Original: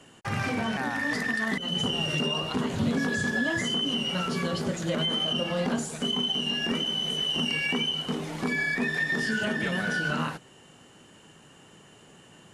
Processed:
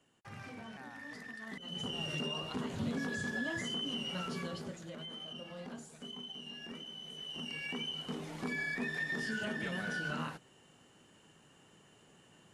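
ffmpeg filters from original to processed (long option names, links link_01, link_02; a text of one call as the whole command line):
ffmpeg -i in.wav -af "volume=-1dB,afade=type=in:start_time=1.41:duration=0.63:silence=0.354813,afade=type=out:start_time=4.31:duration=0.59:silence=0.375837,afade=type=in:start_time=7.11:duration=1.12:silence=0.354813" out.wav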